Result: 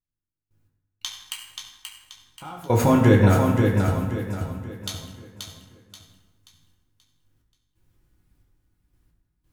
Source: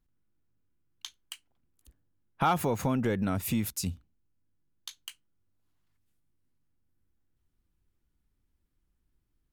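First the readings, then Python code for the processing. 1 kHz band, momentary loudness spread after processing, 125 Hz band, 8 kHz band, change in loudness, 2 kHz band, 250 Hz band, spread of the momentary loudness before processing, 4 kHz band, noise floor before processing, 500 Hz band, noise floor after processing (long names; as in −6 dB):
+4.5 dB, 23 LU, +14.0 dB, +4.0 dB, +8.0 dB, +10.0 dB, +10.5 dB, 19 LU, +8.0 dB, −77 dBFS, +11.5 dB, below −85 dBFS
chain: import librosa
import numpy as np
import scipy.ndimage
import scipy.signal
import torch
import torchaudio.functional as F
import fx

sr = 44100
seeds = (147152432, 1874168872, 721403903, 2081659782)

y = fx.step_gate(x, sr, bpm=89, pattern='...x..xxxx', floor_db=-24.0, edge_ms=4.5)
y = fx.echo_feedback(y, sr, ms=531, feedback_pct=37, wet_db=-5)
y = fx.rev_fdn(y, sr, rt60_s=1.2, lf_ratio=1.1, hf_ratio=0.65, size_ms=56.0, drr_db=-1.0)
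y = F.gain(torch.from_numpy(y), 8.5).numpy()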